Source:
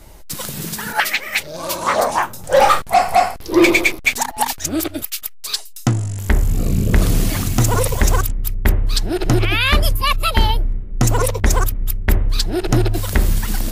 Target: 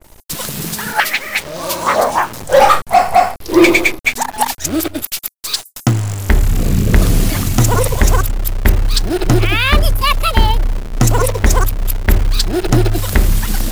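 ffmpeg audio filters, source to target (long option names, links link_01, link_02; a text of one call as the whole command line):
ffmpeg -i in.wav -filter_complex "[0:a]acrossover=split=7000[link_01][link_02];[link_01]acrusher=bits=6:dc=4:mix=0:aa=0.000001[link_03];[link_03][link_02]amix=inputs=2:normalize=0,adynamicequalizer=threshold=0.0355:dfrequency=2300:dqfactor=0.7:tfrequency=2300:tqfactor=0.7:attack=5:release=100:ratio=0.375:range=3:mode=cutabove:tftype=highshelf,volume=3.5dB" out.wav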